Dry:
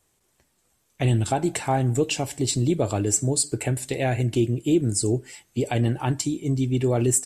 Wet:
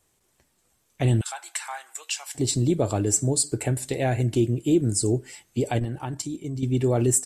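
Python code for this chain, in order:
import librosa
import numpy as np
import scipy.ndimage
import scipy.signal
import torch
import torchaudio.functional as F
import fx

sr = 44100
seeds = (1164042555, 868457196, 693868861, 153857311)

y = fx.highpass(x, sr, hz=1100.0, slope=24, at=(1.21, 2.35))
y = fx.dynamic_eq(y, sr, hz=2600.0, q=1.7, threshold_db=-46.0, ratio=4.0, max_db=-4)
y = fx.level_steps(y, sr, step_db=10, at=(5.79, 6.63))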